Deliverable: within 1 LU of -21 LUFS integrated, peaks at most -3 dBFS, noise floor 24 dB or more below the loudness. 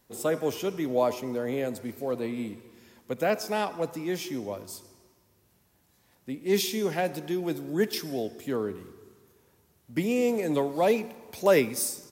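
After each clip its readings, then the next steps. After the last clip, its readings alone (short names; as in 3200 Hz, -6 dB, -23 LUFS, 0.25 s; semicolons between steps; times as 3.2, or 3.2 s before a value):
loudness -29.0 LUFS; peak -10.0 dBFS; loudness target -21.0 LUFS
-> gain +8 dB; limiter -3 dBFS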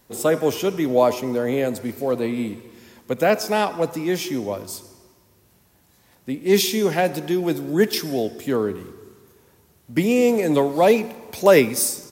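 loudness -21.0 LUFS; peak -3.0 dBFS; noise floor -58 dBFS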